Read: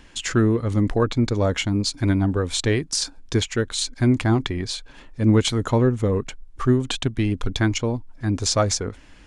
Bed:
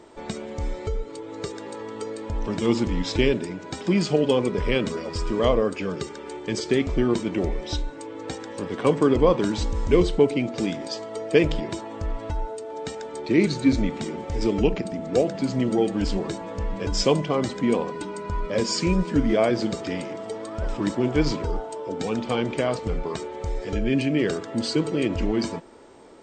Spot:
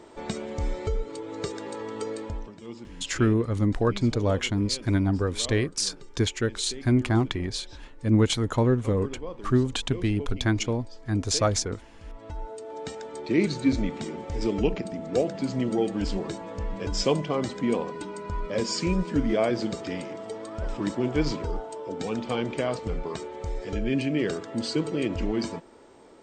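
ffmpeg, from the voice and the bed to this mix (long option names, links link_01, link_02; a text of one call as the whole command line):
ffmpeg -i stem1.wav -i stem2.wav -filter_complex "[0:a]adelay=2850,volume=-3.5dB[link_01];[1:a]volume=15.5dB,afade=type=out:start_time=2.17:duration=0.34:silence=0.112202,afade=type=in:start_time=12:duration=0.69:silence=0.16788[link_02];[link_01][link_02]amix=inputs=2:normalize=0" out.wav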